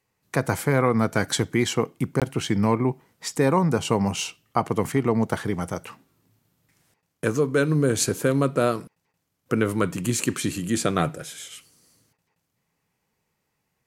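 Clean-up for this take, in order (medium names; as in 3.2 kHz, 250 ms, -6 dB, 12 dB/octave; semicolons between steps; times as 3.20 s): interpolate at 2.20 s, 17 ms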